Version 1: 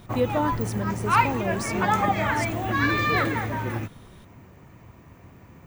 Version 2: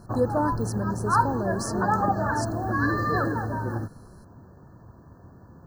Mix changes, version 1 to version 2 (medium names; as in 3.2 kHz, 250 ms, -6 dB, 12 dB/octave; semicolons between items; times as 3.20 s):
background: add treble shelf 3 kHz -11.5 dB; master: add brick-wall FIR band-stop 1.8–4 kHz